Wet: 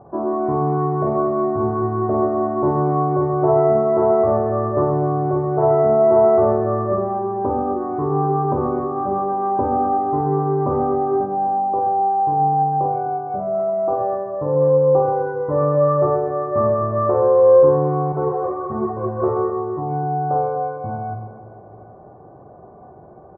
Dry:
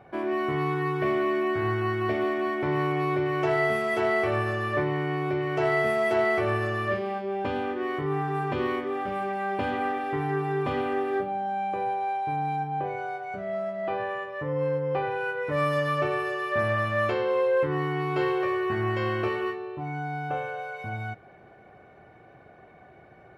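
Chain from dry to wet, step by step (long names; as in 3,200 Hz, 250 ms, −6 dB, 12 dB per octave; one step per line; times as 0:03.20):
elliptic low-pass filter 1,100 Hz, stop band 80 dB
on a send: reverse bouncing-ball delay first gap 50 ms, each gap 1.6×, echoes 5
0:18.12–0:19.22: on the sum: string-ensemble chorus
level +8 dB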